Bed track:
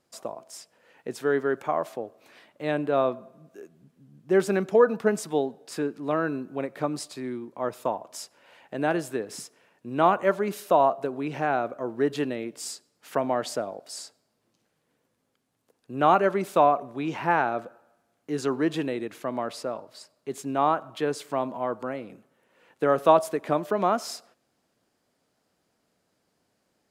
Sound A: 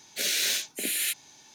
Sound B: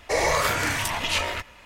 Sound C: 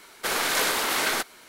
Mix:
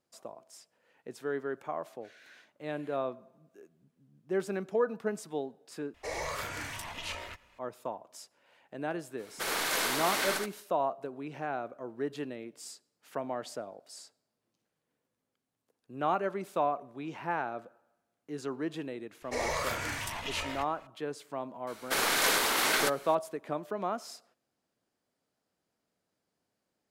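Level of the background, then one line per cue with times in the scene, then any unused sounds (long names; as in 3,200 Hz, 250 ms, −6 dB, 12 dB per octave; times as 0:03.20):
bed track −10 dB
0:01.84: mix in A −16 dB + envelope filter 720–1,500 Hz, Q 4.5, up, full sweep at −28 dBFS
0:05.94: overwrite with B −14 dB
0:09.16: mix in C −7.5 dB, fades 0.05 s + single-tap delay 76 ms −4.5 dB
0:19.22: mix in B −10.5 dB
0:21.67: mix in C −2.5 dB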